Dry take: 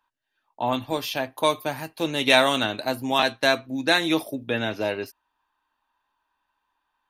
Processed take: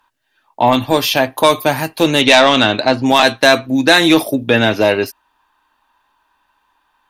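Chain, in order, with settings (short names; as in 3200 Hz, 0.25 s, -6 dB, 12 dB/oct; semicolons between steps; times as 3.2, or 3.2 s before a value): 2.21–3.06 LPF 5500 Hz 24 dB/oct; in parallel at +1.5 dB: limiter -14 dBFS, peak gain reduction 10.5 dB; on the sum: sine folder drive 5 dB, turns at 0 dBFS; gain -1.5 dB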